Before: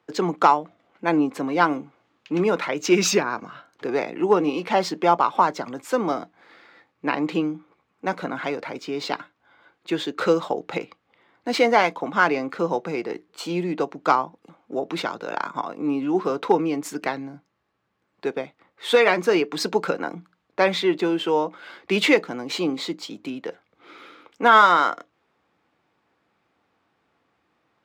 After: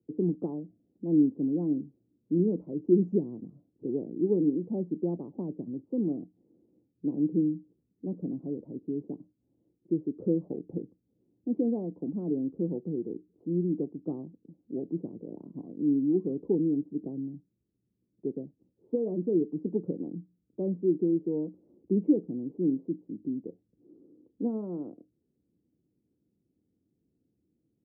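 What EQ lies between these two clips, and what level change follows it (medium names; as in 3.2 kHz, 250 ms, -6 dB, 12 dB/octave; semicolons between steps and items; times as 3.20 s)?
inverse Chebyshev low-pass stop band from 1.5 kHz, stop band 70 dB; 0.0 dB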